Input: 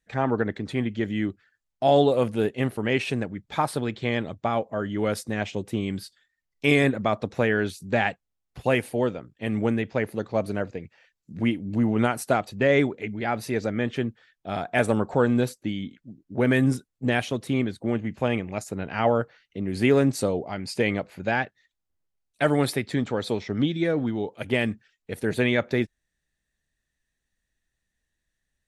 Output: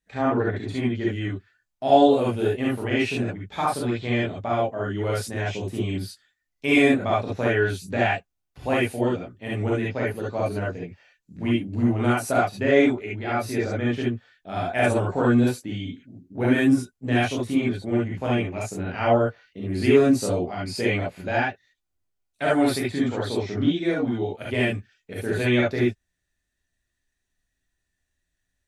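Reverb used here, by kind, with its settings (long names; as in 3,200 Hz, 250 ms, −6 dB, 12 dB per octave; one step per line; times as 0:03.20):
reverb whose tail is shaped and stops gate 90 ms rising, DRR −6 dB
level −5.5 dB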